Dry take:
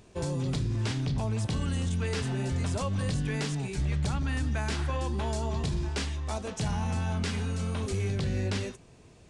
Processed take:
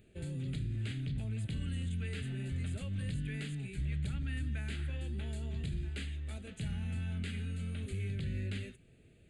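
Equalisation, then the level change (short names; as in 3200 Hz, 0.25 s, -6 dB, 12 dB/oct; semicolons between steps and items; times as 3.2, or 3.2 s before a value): notch 740 Hz, Q 12; dynamic EQ 540 Hz, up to -7 dB, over -48 dBFS, Q 0.8; fixed phaser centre 2400 Hz, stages 4; -6.0 dB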